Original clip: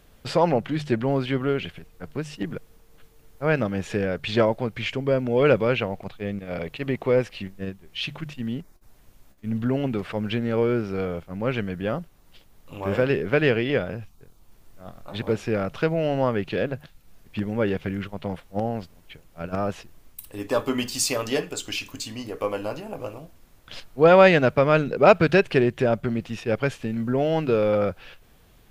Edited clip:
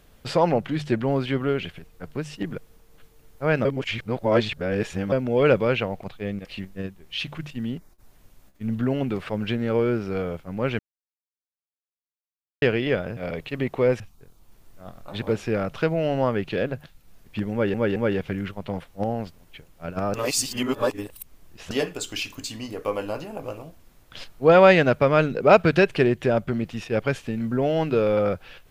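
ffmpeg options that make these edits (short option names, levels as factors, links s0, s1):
-filter_complex "[0:a]asplit=12[s0][s1][s2][s3][s4][s5][s6][s7][s8][s9][s10][s11];[s0]atrim=end=3.652[s12];[s1]atrim=start=3.648:end=5.122,asetpts=PTS-STARTPTS,areverse[s13];[s2]atrim=start=5.118:end=6.452[s14];[s3]atrim=start=7.278:end=11.62,asetpts=PTS-STARTPTS,afade=t=out:st=4.338:d=0.004:c=hsin[s15];[s4]atrim=start=11.62:end=13.45,asetpts=PTS-STARTPTS,volume=0[s16];[s5]atrim=start=13.45:end=14.002,asetpts=PTS-STARTPTS,afade=t=in:d=0.004:c=hsin[s17];[s6]atrim=start=6.448:end=7.282[s18];[s7]atrim=start=13.998:end=17.742[s19];[s8]atrim=start=17.518:end=17.742[s20];[s9]atrim=start=17.518:end=19.702[s21];[s10]atrim=start=19.698:end=21.272,asetpts=PTS-STARTPTS,areverse[s22];[s11]atrim=start=21.268[s23];[s12][s13]acrossfade=d=0.004:c1=hsin:c2=hsin[s24];[s24][s14]acrossfade=d=0.004:c1=hsin:c2=hsin[s25];[s15][s16][s17]concat=n=3:v=0:a=1[s26];[s25][s26]acrossfade=d=0.004:c1=hsin:c2=hsin[s27];[s27][s18]acrossfade=d=0.004:c1=hsin:c2=hsin[s28];[s28][s19]acrossfade=d=0.004:c1=hsin:c2=hsin[s29];[s29][s20]acrossfade=d=0.004:c1=hsin:c2=hsin[s30];[s30][s21]acrossfade=d=0.004:c1=hsin:c2=hsin[s31];[s31][s22]acrossfade=d=0.004:c1=hsin:c2=hsin[s32];[s32][s23]acrossfade=d=0.004:c1=hsin:c2=hsin"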